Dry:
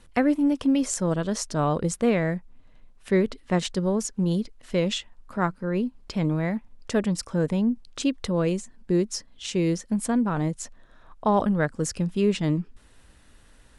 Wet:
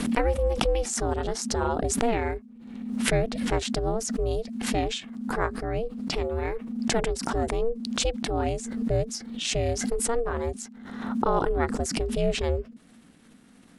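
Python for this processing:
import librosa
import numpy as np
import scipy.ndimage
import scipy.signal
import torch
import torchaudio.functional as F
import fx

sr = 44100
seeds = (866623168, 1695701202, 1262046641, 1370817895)

y = x * np.sin(2.0 * np.pi * 230.0 * np.arange(len(x)) / sr)
y = fx.pre_swell(y, sr, db_per_s=46.0)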